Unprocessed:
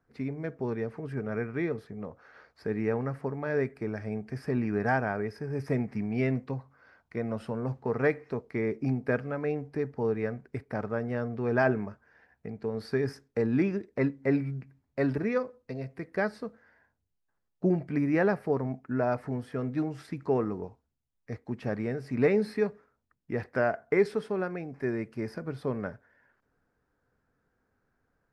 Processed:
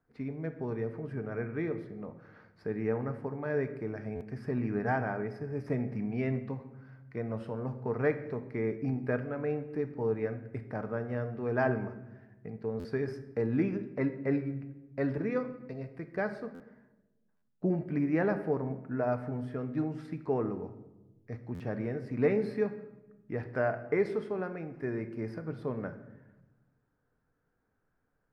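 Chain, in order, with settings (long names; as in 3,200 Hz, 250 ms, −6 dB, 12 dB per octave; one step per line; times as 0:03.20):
high-shelf EQ 3,700 Hz −9 dB
rectangular room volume 480 cubic metres, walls mixed, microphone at 0.47 metres
buffer that repeats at 0:04.15/0:12.79/0:16.54/0:17.36/0:21.54, samples 512, times 4
level −3.5 dB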